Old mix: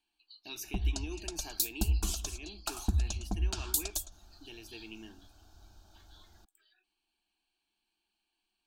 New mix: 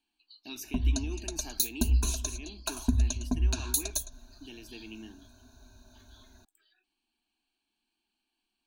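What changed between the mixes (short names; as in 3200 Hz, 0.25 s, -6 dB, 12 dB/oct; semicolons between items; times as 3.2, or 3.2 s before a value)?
background: add ripple EQ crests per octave 1.5, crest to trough 15 dB; master: add bell 250 Hz +14.5 dB 0.29 oct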